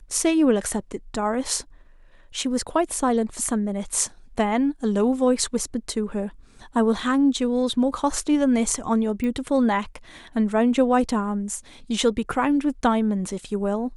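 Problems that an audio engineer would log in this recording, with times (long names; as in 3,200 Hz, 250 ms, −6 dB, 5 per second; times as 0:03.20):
0:09.24: click −18 dBFS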